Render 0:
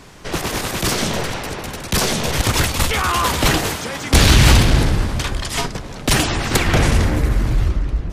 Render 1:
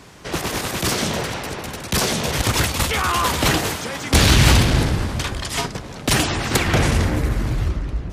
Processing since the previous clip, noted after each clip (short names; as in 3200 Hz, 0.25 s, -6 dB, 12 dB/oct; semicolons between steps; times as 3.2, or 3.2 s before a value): HPF 51 Hz; gain -1.5 dB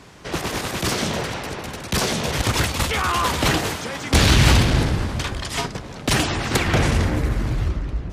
high shelf 9200 Hz -6.5 dB; gain -1 dB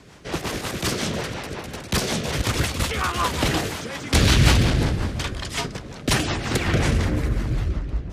rotary speaker horn 5.5 Hz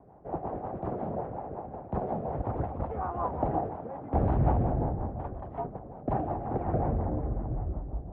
ladder low-pass 850 Hz, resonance 65%; gain +2 dB